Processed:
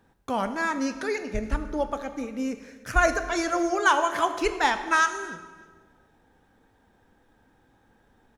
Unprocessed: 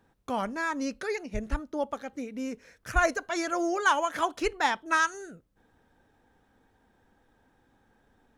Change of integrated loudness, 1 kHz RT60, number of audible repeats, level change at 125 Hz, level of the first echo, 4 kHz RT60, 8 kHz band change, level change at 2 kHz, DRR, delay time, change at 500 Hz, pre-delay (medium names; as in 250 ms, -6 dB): +3.5 dB, 1.3 s, 1, +3.5 dB, -23.0 dB, 1.1 s, +3.5 dB, +3.5 dB, 9.0 dB, 303 ms, +3.5 dB, 16 ms